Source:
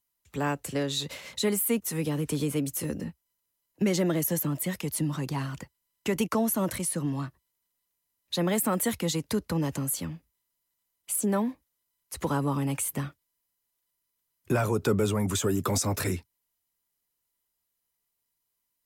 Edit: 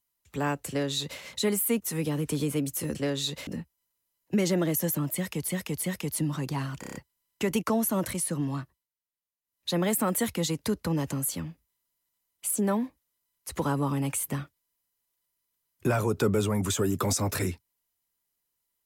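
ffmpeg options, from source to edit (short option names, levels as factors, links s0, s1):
-filter_complex "[0:a]asplit=12[s0][s1][s2][s3][s4][s5][s6][s7][s8][s9][s10][s11];[s0]atrim=end=2.952[s12];[s1]atrim=start=0.678:end=1.202[s13];[s2]atrim=start=2.948:end=4.962[s14];[s3]atrim=start=4.618:end=4.962[s15];[s4]atrim=start=4.618:end=5.632[s16];[s5]atrim=start=5.598:end=5.632[s17];[s6]atrim=start=5.598:end=5.632[s18];[s7]atrim=start=5.598:end=5.632[s19];[s8]atrim=start=5.598:end=5.632[s20];[s9]atrim=start=5.598:end=7.53,asetpts=PTS-STARTPTS,afade=t=out:st=1.672:d=0.26:silence=0.177828[s21];[s10]atrim=start=7.53:end=8.08,asetpts=PTS-STARTPTS,volume=0.178[s22];[s11]atrim=start=8.08,asetpts=PTS-STARTPTS,afade=t=in:d=0.26:silence=0.177828[s23];[s12][s13]acrossfade=d=0.004:c1=hsin:c2=hsin[s24];[s24][s14]acrossfade=d=0.004:c1=hsin:c2=hsin[s25];[s25][s15]acrossfade=d=0.004:c1=hsin:c2=hsin[s26];[s26][s16]acrossfade=d=0.004:c1=hsin:c2=hsin[s27];[s27][s17]acrossfade=d=0.004:c1=hsin:c2=hsin[s28];[s28][s18]acrossfade=d=0.004:c1=hsin:c2=hsin[s29];[s29][s19]acrossfade=d=0.004:c1=hsin:c2=hsin[s30];[s30][s20]acrossfade=d=0.004:c1=hsin:c2=hsin[s31];[s21][s22][s23]concat=n=3:v=0:a=1[s32];[s31][s32]acrossfade=d=0.004:c1=hsin:c2=hsin"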